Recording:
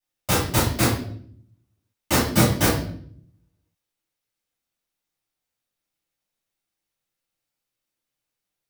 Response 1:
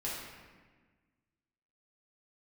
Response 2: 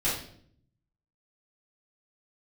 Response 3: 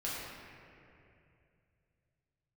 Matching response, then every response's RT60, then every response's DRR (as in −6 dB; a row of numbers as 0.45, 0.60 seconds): 2; 1.4, 0.60, 2.6 seconds; −7.5, −10.5, −8.0 decibels